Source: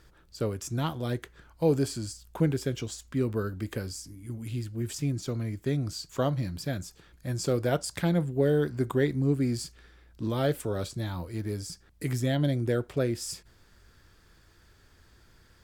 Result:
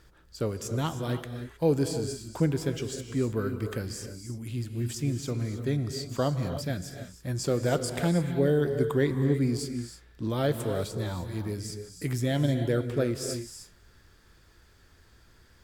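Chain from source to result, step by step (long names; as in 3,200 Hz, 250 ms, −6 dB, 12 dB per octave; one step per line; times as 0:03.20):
reverb whose tail is shaped and stops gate 340 ms rising, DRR 7.5 dB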